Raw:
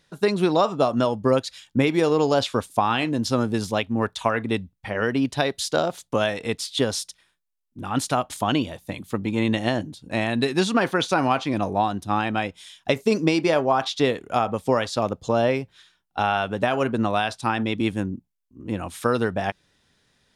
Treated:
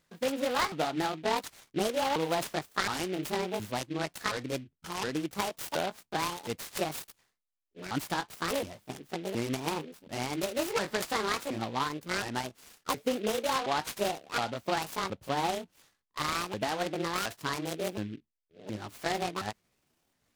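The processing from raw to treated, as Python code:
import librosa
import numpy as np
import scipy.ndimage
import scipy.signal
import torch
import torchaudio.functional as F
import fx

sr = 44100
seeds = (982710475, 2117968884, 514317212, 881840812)

y = fx.pitch_ramps(x, sr, semitones=11.5, every_ms=719)
y = fx.noise_mod_delay(y, sr, seeds[0], noise_hz=2400.0, depth_ms=0.067)
y = y * librosa.db_to_amplitude(-8.5)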